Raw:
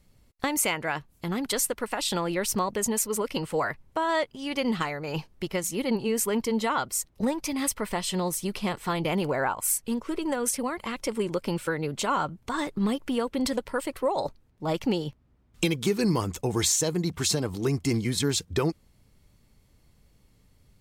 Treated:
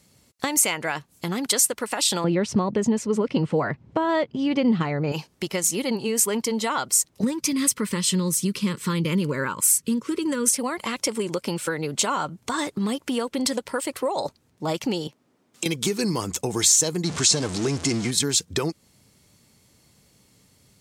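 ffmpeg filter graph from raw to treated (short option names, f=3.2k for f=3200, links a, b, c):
-filter_complex "[0:a]asettb=1/sr,asplit=3[a][b][c];[a]atrim=end=2.244[d];[b]atrim=start=2.24:end=5.12,asetpts=PTS-STARTPTS,afade=t=in:d=0.004:c=qsin,afade=t=out:st=2.876:d=0.004:c=qsin,lowpass=3.6k,equalizer=f=130:w=0.3:g=15[e];[c]atrim=start=5.116[f];[d][e]acrossfade=d=0.004:c1=hsin:c2=qsin[g];[g][f]acrossfade=d=0.004:c1=qsin:c2=hsin,asettb=1/sr,asplit=3[h][i][j];[h]atrim=end=7.234[k];[i]atrim=start=7.23:end=10.53,asetpts=PTS-STARTPTS,afade=t=in:d=0.004:c=qsin,afade=t=out:st=3.296:d=0.004:c=qsin,asuperstop=centerf=730:order=4:qfactor=1.7,equalizer=f=170:w=1:g=9.5[l];[j]atrim=start=10.526[m];[k][l]acrossfade=d=0.004:c1=hsin:c2=qsin[n];[n][m]acrossfade=d=0.004:c1=qsin:c2=hsin,asettb=1/sr,asplit=3[o][p][q];[o]atrim=end=15.074[r];[p]atrim=start=15.07:end=15.66,asetpts=PTS-STARTPTS,afade=t=in:d=0.004:c=qsin,afade=t=out:st=0.586:d=0.004:c=qsin,highpass=330,lowshelf=f=470:g=7.5,acompressor=threshold=-44dB:ratio=2:attack=3.2:release=140:knee=1:detection=peak[s];[q]atrim=start=15.656[t];[r][s]acrossfade=d=0.004:c1=hsin:c2=qsin[u];[u][t]acrossfade=d=0.004:c1=qsin:c2=hsin,asettb=1/sr,asplit=3[v][w][x];[v]atrim=end=17.044[y];[w]atrim=start=17.04:end=18.11,asetpts=PTS-STARTPTS,afade=t=in:d=0.004:c=qsin,afade=t=out:st=1.066:d=0.004:c=qsin,aeval=exprs='val(0)+0.5*0.0335*sgn(val(0))':c=same,lowpass=f=8.7k:w=0.5412,lowpass=f=8.7k:w=1.3066[z];[x]atrim=start=18.106[aa];[y][z]acrossfade=d=0.004:c1=hsin:c2=qsin[ab];[ab][aa]acrossfade=d=0.004:c1=qsin:c2=hsin,acompressor=threshold=-31dB:ratio=2,highpass=120,equalizer=f=7.2k:w=0.65:g=8,volume=5.5dB"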